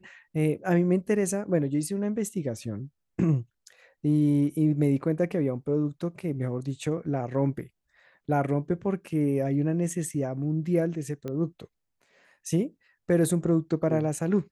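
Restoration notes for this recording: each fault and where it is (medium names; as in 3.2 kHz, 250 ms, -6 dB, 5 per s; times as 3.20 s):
11.28 s: pop -22 dBFS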